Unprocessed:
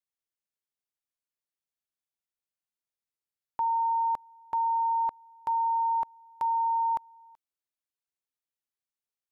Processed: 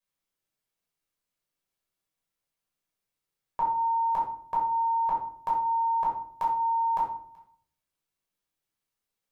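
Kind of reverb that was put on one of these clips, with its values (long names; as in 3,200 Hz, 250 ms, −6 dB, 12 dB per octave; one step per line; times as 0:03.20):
rectangular room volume 700 cubic metres, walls furnished, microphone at 5.5 metres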